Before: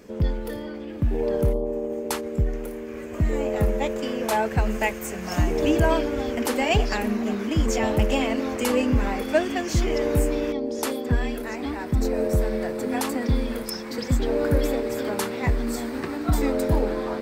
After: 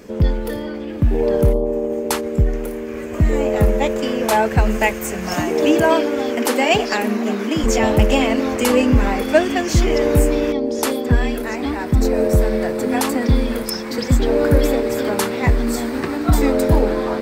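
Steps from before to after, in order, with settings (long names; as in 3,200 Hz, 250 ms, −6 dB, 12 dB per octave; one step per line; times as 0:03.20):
0:05.34–0:07.64: high-pass filter 210 Hz 12 dB per octave
level +7 dB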